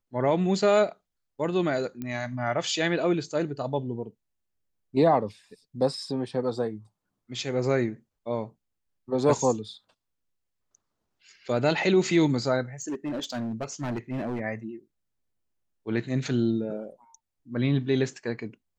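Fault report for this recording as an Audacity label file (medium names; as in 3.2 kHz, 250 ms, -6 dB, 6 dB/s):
2.020000	2.020000	pop -22 dBFS
12.820000	14.410000	clipped -27 dBFS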